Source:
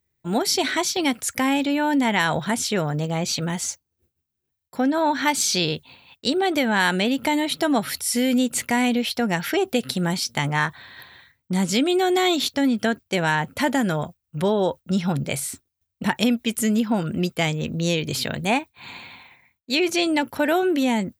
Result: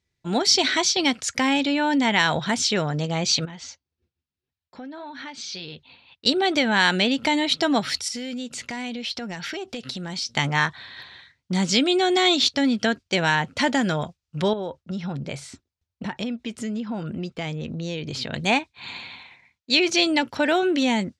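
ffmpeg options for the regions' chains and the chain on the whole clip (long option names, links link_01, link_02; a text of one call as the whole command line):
ffmpeg -i in.wav -filter_complex "[0:a]asettb=1/sr,asplit=3[link_01][link_02][link_03];[link_01]atrim=end=3.454[link_04];[link_02]atrim=start=3.45:end=6.26,asetpts=PTS-STARTPTS,afade=type=in:duration=0.004:curve=qsin,afade=type=out:start_time=2.806:duration=0.004:curve=qsin,flanger=delay=0.7:depth=3.6:regen=-63:speed=1.8:shape=sinusoidal,lowpass=3900,acompressor=threshold=-36dB:ratio=4:attack=3.2:release=140:knee=1:detection=peak[link_05];[link_03]atrim=start=6.256[link_06];[link_04][link_05]acrossfade=duration=0.004:curve1=hsin:curve2=qsin[link_07];[link_07][link_06]acrossfade=duration=0.004:curve1=qsin:curve2=hsin,asettb=1/sr,asplit=3[link_08][link_09][link_10];[link_08]atrim=end=8.084[link_11];[link_09]atrim=start=8.08:end=10.31,asetpts=PTS-STARTPTS,afade=type=in:duration=0.004:curve=qsin,afade=type=out:start_time=2.226:duration=0.004:curve=qsin,acompressor=threshold=-30dB:ratio=4:attack=3.2:release=140:knee=1:detection=peak,volume=25dB,asoftclip=hard,volume=-25dB[link_12];[link_10]atrim=start=10.306[link_13];[link_11][link_12]acrossfade=duration=0.004:curve1=hsin:curve2=qsin[link_14];[link_14][link_13]acrossfade=duration=0.004:curve1=qsin:curve2=hsin,asettb=1/sr,asplit=3[link_15][link_16][link_17];[link_15]atrim=end=14.534[link_18];[link_16]atrim=start=14.53:end=18.33,asetpts=PTS-STARTPTS,afade=type=in:duration=0.004:curve=qsin,afade=type=out:start_time=3.796:duration=0.004:curve=qsin,highshelf=frequency=2300:gain=-10.5,acompressor=threshold=-27dB:ratio=3:attack=3.2:release=140:knee=1:detection=peak[link_19];[link_17]atrim=start=18.326[link_20];[link_18][link_19]acrossfade=duration=0.004:curve1=hsin:curve2=qsin[link_21];[link_21][link_20]acrossfade=duration=0.004:curve1=qsin:curve2=hsin,lowpass=frequency=5600:width=0.5412,lowpass=frequency=5600:width=1.3066,aemphasis=mode=production:type=75kf,volume=-1dB" out.wav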